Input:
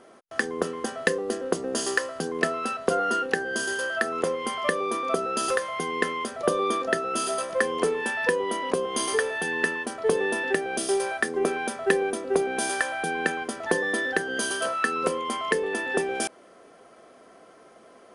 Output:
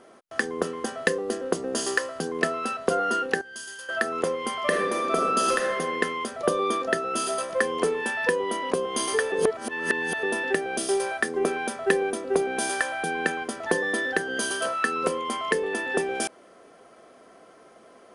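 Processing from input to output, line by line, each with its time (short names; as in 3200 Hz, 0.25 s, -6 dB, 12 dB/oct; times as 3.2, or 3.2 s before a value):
3.41–3.89 passive tone stack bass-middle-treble 5-5-5
4.65–5.79 reverb throw, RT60 1.1 s, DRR 0.5 dB
9.32–10.23 reverse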